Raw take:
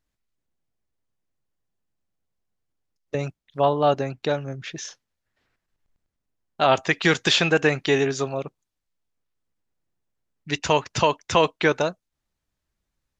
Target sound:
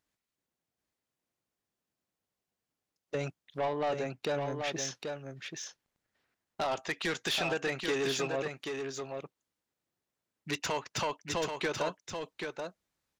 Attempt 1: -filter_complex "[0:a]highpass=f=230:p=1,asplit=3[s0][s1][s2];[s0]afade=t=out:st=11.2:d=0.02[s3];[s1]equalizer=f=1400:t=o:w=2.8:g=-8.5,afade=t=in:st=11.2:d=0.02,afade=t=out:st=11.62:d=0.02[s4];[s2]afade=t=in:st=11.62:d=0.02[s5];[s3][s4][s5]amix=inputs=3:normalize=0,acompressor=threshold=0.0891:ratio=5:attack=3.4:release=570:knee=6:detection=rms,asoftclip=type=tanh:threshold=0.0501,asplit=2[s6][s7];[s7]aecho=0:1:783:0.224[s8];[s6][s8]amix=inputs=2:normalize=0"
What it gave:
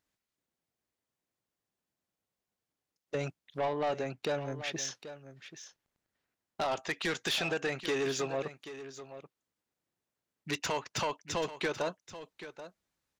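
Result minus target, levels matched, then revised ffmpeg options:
echo-to-direct -7.5 dB
-filter_complex "[0:a]highpass=f=230:p=1,asplit=3[s0][s1][s2];[s0]afade=t=out:st=11.2:d=0.02[s3];[s1]equalizer=f=1400:t=o:w=2.8:g=-8.5,afade=t=in:st=11.2:d=0.02,afade=t=out:st=11.62:d=0.02[s4];[s2]afade=t=in:st=11.62:d=0.02[s5];[s3][s4][s5]amix=inputs=3:normalize=0,acompressor=threshold=0.0891:ratio=5:attack=3.4:release=570:knee=6:detection=rms,asoftclip=type=tanh:threshold=0.0501,asplit=2[s6][s7];[s7]aecho=0:1:783:0.531[s8];[s6][s8]amix=inputs=2:normalize=0"

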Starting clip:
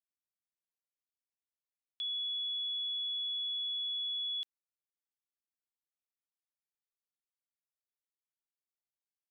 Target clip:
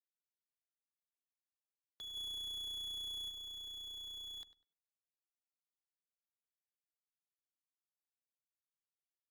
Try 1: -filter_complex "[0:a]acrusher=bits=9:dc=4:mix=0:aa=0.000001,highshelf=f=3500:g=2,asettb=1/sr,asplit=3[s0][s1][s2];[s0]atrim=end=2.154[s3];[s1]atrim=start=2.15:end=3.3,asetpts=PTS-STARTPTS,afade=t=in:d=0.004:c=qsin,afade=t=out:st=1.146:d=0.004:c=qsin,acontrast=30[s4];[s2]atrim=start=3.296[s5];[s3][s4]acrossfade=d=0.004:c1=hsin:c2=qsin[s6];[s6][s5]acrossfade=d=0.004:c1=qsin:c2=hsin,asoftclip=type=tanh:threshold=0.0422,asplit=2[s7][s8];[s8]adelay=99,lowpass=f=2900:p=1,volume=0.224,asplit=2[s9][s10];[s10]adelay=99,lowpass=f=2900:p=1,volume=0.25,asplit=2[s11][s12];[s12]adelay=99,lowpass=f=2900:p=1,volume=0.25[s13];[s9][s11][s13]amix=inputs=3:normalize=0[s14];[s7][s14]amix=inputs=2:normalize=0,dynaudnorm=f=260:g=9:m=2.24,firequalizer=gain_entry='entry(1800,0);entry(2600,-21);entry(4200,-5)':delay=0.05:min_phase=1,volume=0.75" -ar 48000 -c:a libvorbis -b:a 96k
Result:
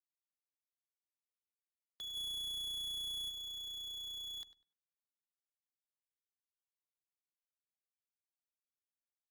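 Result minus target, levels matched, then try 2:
8 kHz band +2.5 dB
-filter_complex "[0:a]acrusher=bits=9:dc=4:mix=0:aa=0.000001,highshelf=f=3500:g=-4.5,asettb=1/sr,asplit=3[s0][s1][s2];[s0]atrim=end=2.154[s3];[s1]atrim=start=2.15:end=3.3,asetpts=PTS-STARTPTS,afade=t=in:d=0.004:c=qsin,afade=t=out:st=1.146:d=0.004:c=qsin,acontrast=30[s4];[s2]atrim=start=3.296[s5];[s3][s4]acrossfade=d=0.004:c1=hsin:c2=qsin[s6];[s6][s5]acrossfade=d=0.004:c1=qsin:c2=hsin,asoftclip=type=tanh:threshold=0.0422,asplit=2[s7][s8];[s8]adelay=99,lowpass=f=2900:p=1,volume=0.224,asplit=2[s9][s10];[s10]adelay=99,lowpass=f=2900:p=1,volume=0.25,asplit=2[s11][s12];[s12]adelay=99,lowpass=f=2900:p=1,volume=0.25[s13];[s9][s11][s13]amix=inputs=3:normalize=0[s14];[s7][s14]amix=inputs=2:normalize=0,dynaudnorm=f=260:g=9:m=2.24,firequalizer=gain_entry='entry(1800,0);entry(2600,-21);entry(4200,-5)':delay=0.05:min_phase=1,volume=0.75" -ar 48000 -c:a libvorbis -b:a 96k

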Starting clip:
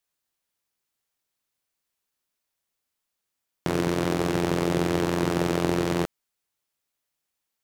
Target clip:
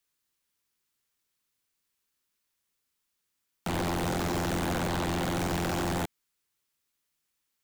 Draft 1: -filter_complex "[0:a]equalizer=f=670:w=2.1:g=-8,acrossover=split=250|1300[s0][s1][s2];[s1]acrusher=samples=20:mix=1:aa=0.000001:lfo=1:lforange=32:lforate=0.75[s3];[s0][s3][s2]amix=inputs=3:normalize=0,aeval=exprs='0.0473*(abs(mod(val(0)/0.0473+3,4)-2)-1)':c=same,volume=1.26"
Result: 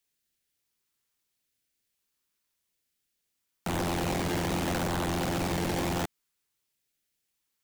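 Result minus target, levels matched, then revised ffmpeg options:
decimation with a swept rate: distortion +15 dB
-filter_complex "[0:a]equalizer=f=670:w=2.1:g=-8,acrossover=split=250|1300[s0][s1][s2];[s1]acrusher=samples=4:mix=1:aa=0.000001:lfo=1:lforange=6.4:lforate=0.75[s3];[s0][s3][s2]amix=inputs=3:normalize=0,aeval=exprs='0.0473*(abs(mod(val(0)/0.0473+3,4)-2)-1)':c=same,volume=1.26"

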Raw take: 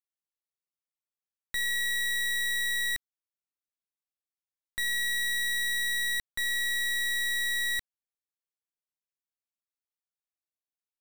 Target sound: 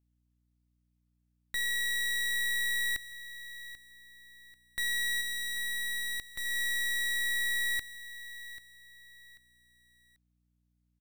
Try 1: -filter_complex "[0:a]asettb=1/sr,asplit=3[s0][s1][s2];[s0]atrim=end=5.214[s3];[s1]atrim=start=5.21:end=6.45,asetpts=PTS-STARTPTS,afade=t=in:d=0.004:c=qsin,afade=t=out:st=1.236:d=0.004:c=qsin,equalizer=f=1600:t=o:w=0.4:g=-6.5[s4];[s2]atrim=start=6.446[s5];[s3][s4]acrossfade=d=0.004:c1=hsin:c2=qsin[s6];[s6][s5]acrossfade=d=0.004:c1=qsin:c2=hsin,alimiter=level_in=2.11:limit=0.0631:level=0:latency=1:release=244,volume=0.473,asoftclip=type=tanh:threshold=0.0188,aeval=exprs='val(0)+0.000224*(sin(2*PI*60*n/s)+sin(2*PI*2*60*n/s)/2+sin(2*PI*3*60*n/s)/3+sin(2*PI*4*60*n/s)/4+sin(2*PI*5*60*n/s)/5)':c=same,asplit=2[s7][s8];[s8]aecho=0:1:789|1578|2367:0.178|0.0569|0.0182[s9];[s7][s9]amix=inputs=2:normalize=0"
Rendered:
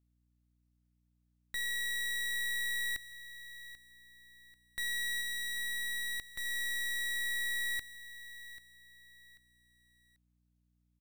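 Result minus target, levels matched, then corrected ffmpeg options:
saturation: distortion +18 dB
-filter_complex "[0:a]asettb=1/sr,asplit=3[s0][s1][s2];[s0]atrim=end=5.214[s3];[s1]atrim=start=5.21:end=6.45,asetpts=PTS-STARTPTS,afade=t=in:d=0.004:c=qsin,afade=t=out:st=1.236:d=0.004:c=qsin,equalizer=f=1600:t=o:w=0.4:g=-6.5[s4];[s2]atrim=start=6.446[s5];[s3][s4]acrossfade=d=0.004:c1=hsin:c2=qsin[s6];[s6][s5]acrossfade=d=0.004:c1=qsin:c2=hsin,alimiter=level_in=2.11:limit=0.0631:level=0:latency=1:release=244,volume=0.473,asoftclip=type=tanh:threshold=0.0631,aeval=exprs='val(0)+0.000224*(sin(2*PI*60*n/s)+sin(2*PI*2*60*n/s)/2+sin(2*PI*3*60*n/s)/3+sin(2*PI*4*60*n/s)/4+sin(2*PI*5*60*n/s)/5)':c=same,asplit=2[s7][s8];[s8]aecho=0:1:789|1578|2367:0.178|0.0569|0.0182[s9];[s7][s9]amix=inputs=2:normalize=0"

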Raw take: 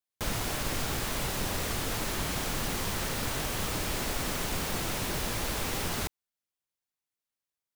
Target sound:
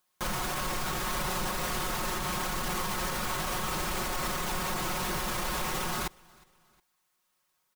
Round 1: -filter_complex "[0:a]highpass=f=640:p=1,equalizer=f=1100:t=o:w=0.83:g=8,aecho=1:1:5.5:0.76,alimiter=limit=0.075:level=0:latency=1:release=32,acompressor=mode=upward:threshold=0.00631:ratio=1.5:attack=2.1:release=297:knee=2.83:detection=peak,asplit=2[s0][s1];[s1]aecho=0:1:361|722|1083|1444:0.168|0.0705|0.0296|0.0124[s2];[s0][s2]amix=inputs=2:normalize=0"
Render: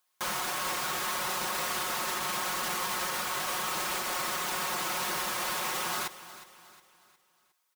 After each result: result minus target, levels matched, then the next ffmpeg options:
echo-to-direct +10.5 dB; 500 Hz band -3.0 dB
-filter_complex "[0:a]highpass=f=640:p=1,equalizer=f=1100:t=o:w=0.83:g=8,aecho=1:1:5.5:0.76,alimiter=limit=0.075:level=0:latency=1:release=32,acompressor=mode=upward:threshold=0.00631:ratio=1.5:attack=2.1:release=297:knee=2.83:detection=peak,asplit=2[s0][s1];[s1]aecho=0:1:361|722:0.0501|0.021[s2];[s0][s2]amix=inputs=2:normalize=0"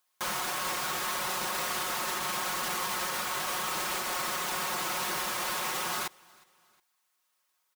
500 Hz band -3.0 dB
-filter_complex "[0:a]equalizer=f=1100:t=o:w=0.83:g=8,aecho=1:1:5.5:0.76,alimiter=limit=0.075:level=0:latency=1:release=32,acompressor=mode=upward:threshold=0.00631:ratio=1.5:attack=2.1:release=297:knee=2.83:detection=peak,asplit=2[s0][s1];[s1]aecho=0:1:361|722:0.0501|0.021[s2];[s0][s2]amix=inputs=2:normalize=0"

